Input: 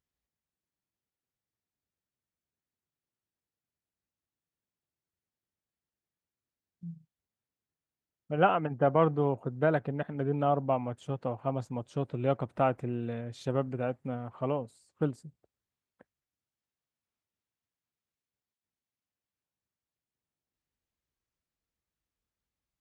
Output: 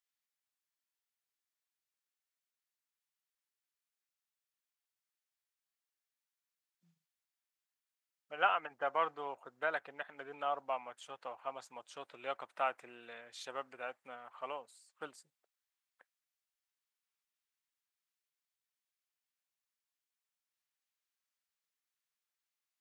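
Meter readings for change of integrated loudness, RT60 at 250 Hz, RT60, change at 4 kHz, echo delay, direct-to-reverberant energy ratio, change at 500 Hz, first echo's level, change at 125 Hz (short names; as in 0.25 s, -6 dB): -8.5 dB, none, none, +1.0 dB, none, none, -12.5 dB, none, under -35 dB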